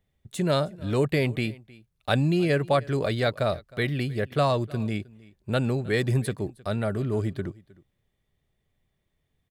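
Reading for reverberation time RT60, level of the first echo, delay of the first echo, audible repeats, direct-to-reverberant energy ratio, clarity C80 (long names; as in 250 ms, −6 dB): no reverb audible, −22.5 dB, 312 ms, 1, no reverb audible, no reverb audible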